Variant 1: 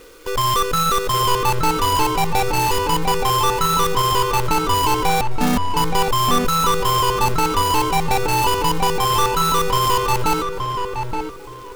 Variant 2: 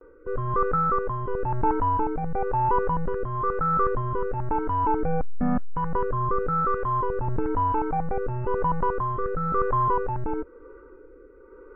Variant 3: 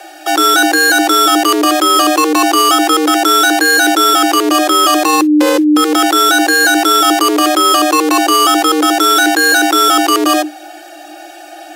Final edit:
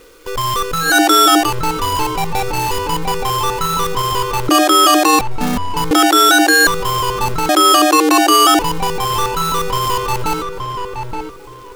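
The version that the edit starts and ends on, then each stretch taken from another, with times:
1
0.88–1.46 s: from 3, crossfade 0.16 s
4.49–5.19 s: from 3
5.91–6.67 s: from 3
7.49–8.59 s: from 3
not used: 2

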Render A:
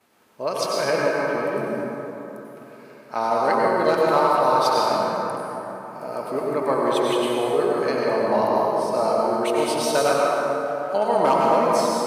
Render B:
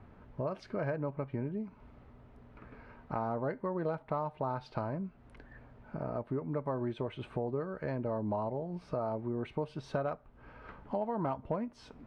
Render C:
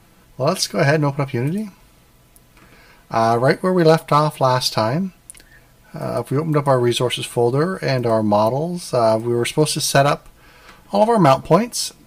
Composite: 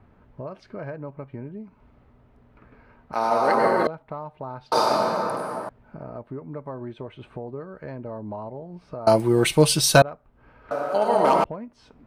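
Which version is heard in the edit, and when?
B
3.13–3.87 s: from A
4.72–5.69 s: from A
9.07–10.02 s: from C
10.71–11.44 s: from A

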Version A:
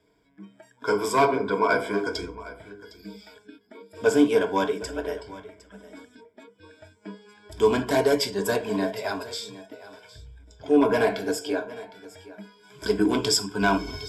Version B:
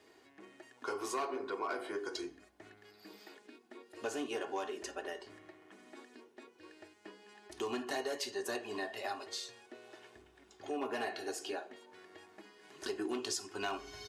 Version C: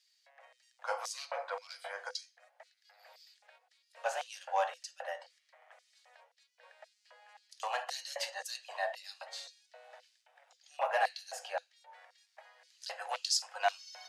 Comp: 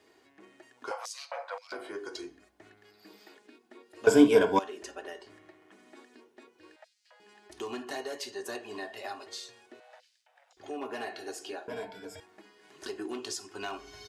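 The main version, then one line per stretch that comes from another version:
B
0.91–1.72 s: from C
4.07–4.59 s: from A
6.76–7.20 s: from C
9.80–10.57 s: from C
11.68–12.20 s: from A

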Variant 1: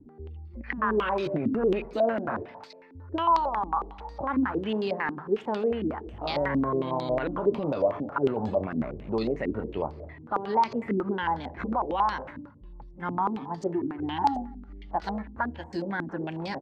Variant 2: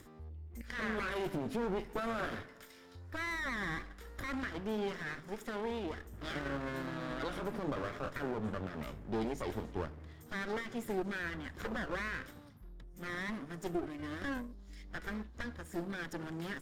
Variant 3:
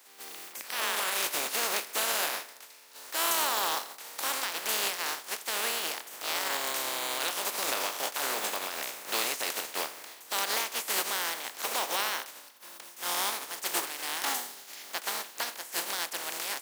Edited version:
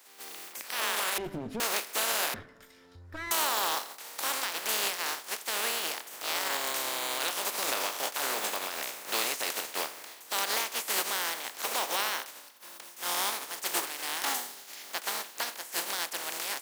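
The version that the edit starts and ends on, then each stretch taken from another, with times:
3
1.18–1.60 s: from 2
2.34–3.31 s: from 2
not used: 1

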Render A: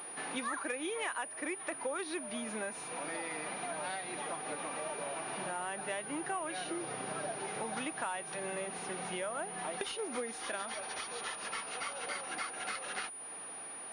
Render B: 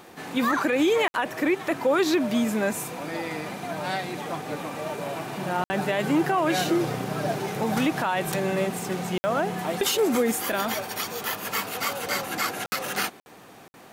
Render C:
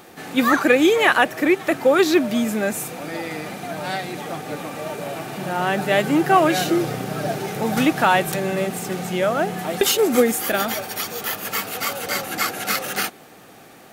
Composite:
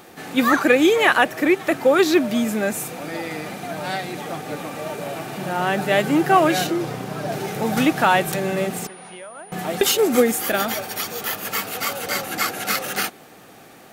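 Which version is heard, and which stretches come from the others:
C
6.67–7.32 s: from B
8.87–9.52 s: from A

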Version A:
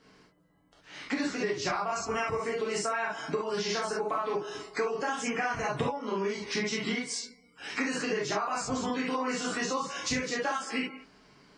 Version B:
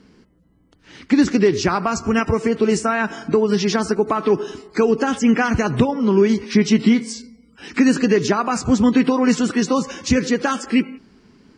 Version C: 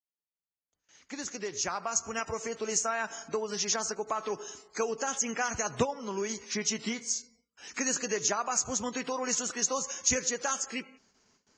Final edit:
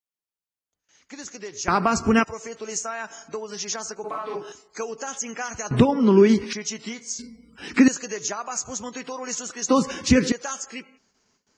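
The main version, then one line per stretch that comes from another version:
C
1.68–2.24 s: from B
4.04–4.52 s: from A
5.71–6.53 s: from B
7.19–7.88 s: from B
9.69–10.32 s: from B

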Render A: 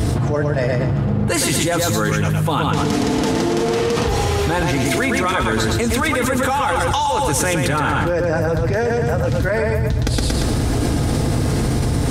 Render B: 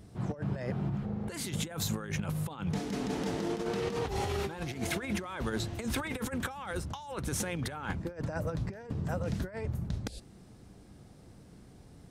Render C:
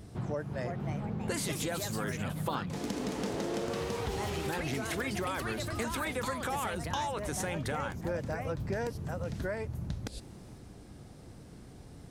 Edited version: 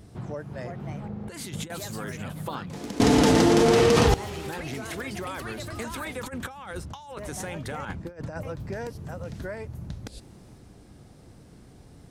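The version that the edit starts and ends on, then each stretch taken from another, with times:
C
1.08–1.70 s: from B
3.00–4.14 s: from A
6.26–7.17 s: from B
7.85–8.43 s: from B

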